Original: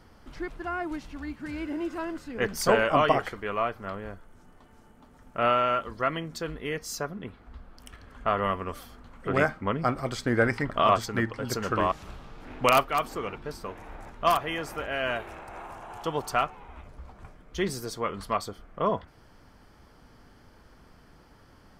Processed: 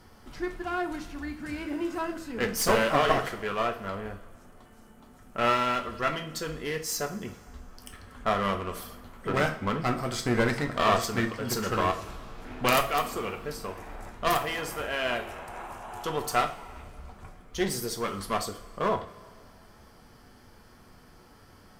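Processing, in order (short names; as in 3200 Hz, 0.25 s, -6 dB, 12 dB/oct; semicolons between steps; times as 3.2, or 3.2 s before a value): high shelf 6700 Hz +8 dB; one-sided clip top -28.5 dBFS; two-slope reverb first 0.36 s, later 2.2 s, from -18 dB, DRR 4.5 dB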